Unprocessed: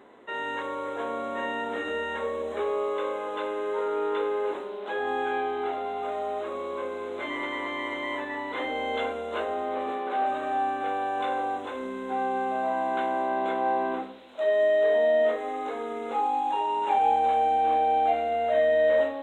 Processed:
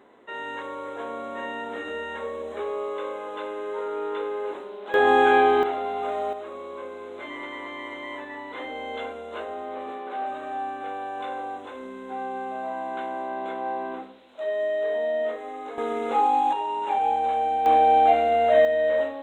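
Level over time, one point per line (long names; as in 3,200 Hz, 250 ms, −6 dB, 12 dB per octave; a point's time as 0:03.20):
−2 dB
from 0:04.94 +11 dB
from 0:05.63 +3 dB
from 0:06.33 −4 dB
from 0:15.78 +5.5 dB
from 0:16.53 −1 dB
from 0:17.66 +6 dB
from 0:18.65 −1 dB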